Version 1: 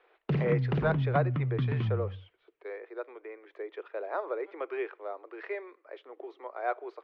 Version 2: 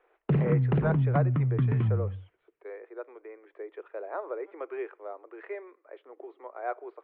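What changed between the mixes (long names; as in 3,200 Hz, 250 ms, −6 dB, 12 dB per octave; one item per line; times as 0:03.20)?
first sound +4.5 dB
master: add high-frequency loss of the air 480 metres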